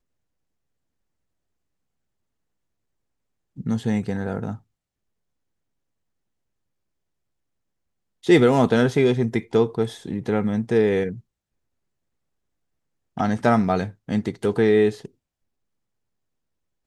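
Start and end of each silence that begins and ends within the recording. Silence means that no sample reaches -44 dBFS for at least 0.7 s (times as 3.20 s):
4.58–8.24 s
11.20–13.17 s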